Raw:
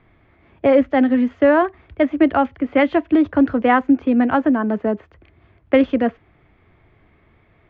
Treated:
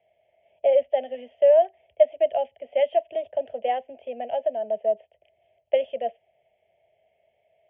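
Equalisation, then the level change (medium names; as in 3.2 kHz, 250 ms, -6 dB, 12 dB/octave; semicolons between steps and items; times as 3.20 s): two resonant band-passes 1.4 kHz, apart 2.3 oct; distance through air 84 m; static phaser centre 1.1 kHz, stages 6; +4.5 dB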